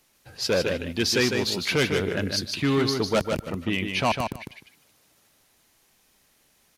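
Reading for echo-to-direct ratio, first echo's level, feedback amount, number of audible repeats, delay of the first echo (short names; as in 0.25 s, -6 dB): -5.5 dB, -5.5 dB, 15%, 2, 0.152 s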